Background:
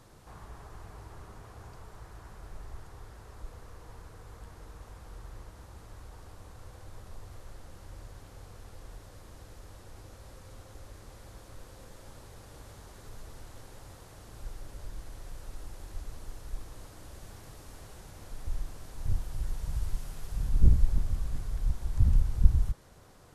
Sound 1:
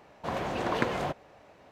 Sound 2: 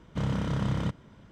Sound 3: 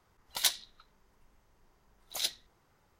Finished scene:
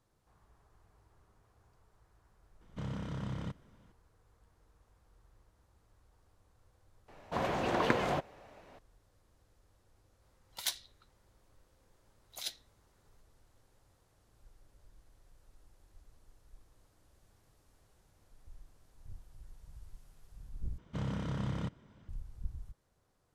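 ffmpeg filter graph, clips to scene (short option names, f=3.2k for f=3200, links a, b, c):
-filter_complex "[2:a]asplit=2[a][b];[0:a]volume=-19.5dB[c];[a]aresample=32000,aresample=44100[d];[c]asplit=2[e][f];[e]atrim=end=20.784[g];[b]atrim=end=1.31,asetpts=PTS-STARTPTS,volume=-7.5dB[h];[f]atrim=start=22.086[i];[d]atrim=end=1.31,asetpts=PTS-STARTPTS,volume=-10.5dB,afade=t=in:d=0.004:c=hsin,afade=t=out:st=1.306:d=0.004:c=hsin,adelay=2610[j];[1:a]atrim=end=1.71,asetpts=PTS-STARTPTS,volume=-1dB,afade=t=in:d=0.004:c=hsin,afade=t=out:st=1.706:d=0.004:c=hsin,adelay=7080[k];[3:a]atrim=end=2.99,asetpts=PTS-STARTPTS,volume=-7.5dB,afade=t=in:d=0.004:c=hsin,afade=t=out:st=2.986:d=0.004:c=hsin,adelay=10220[l];[g][h]acrossfade=d=0.004:c1=hsin:c2=hsin[m];[m][i]acrossfade=d=0.004:c1=hsin:c2=hsin[n];[n][j][k][l]amix=inputs=4:normalize=0"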